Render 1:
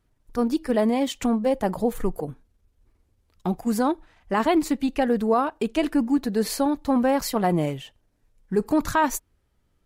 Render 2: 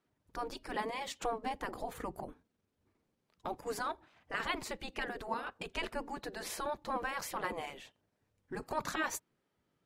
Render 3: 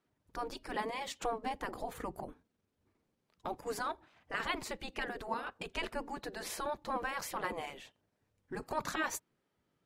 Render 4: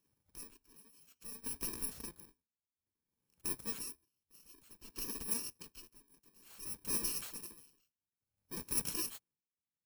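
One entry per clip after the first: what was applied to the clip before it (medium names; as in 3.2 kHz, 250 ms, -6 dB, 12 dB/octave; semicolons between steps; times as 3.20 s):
treble shelf 7.7 kHz -11 dB; spectral gate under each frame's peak -10 dB weak; trim -4 dB
no audible change
bit-reversed sample order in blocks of 64 samples; logarithmic tremolo 0.57 Hz, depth 26 dB; trim +1 dB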